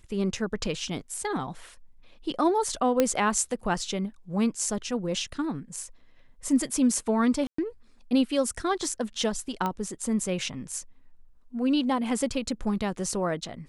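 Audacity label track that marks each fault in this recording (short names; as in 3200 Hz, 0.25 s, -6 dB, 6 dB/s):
3.000000	3.000000	pop -8 dBFS
7.470000	7.580000	gap 0.114 s
9.660000	9.660000	pop -16 dBFS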